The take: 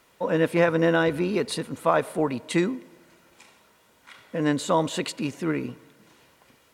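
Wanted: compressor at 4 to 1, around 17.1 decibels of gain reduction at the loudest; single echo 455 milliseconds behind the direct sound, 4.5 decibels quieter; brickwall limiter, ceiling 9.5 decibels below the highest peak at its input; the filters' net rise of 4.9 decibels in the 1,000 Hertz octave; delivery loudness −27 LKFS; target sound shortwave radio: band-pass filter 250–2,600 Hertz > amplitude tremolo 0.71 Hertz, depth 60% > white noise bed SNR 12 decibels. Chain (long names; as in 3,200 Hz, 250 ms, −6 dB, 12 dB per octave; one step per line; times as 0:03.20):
parametric band 1,000 Hz +6 dB
downward compressor 4 to 1, threshold −34 dBFS
brickwall limiter −28 dBFS
band-pass filter 250–2,600 Hz
single-tap delay 455 ms −4.5 dB
amplitude tremolo 0.71 Hz, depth 60%
white noise bed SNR 12 dB
level +16 dB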